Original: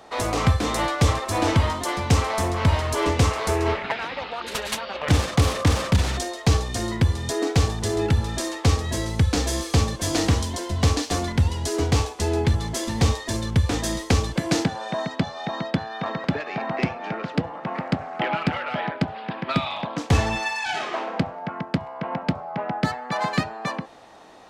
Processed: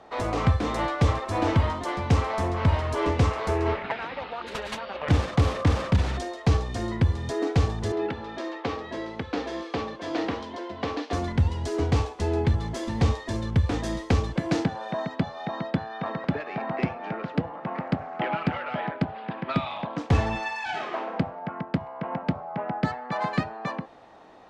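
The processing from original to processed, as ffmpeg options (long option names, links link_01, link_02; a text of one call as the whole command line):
ffmpeg -i in.wav -filter_complex "[0:a]asettb=1/sr,asplit=3[link_01][link_02][link_03];[link_01]atrim=end=7.924[link_04];[link_02]atrim=start=7.92:end=11.13,asetpts=PTS-STARTPTS,afade=type=in:duration=0.004:curve=qsin,afade=type=out:start_time=3.206:duration=0.004:curve=qsin,acrossover=split=230 4700:gain=0.0794 1 0.0891[link_05][link_06][link_07];[link_05][link_06][link_07]amix=inputs=3:normalize=0[link_08];[link_03]atrim=start=11.126[link_09];[link_04][link_08]acrossfade=duration=0.004:curve1=hsin:curve2=qsin[link_10];[link_10][link_09]acrossfade=duration=0.004:curve1=qsin:curve2=hsin,aemphasis=mode=reproduction:type=75fm,volume=-3dB" out.wav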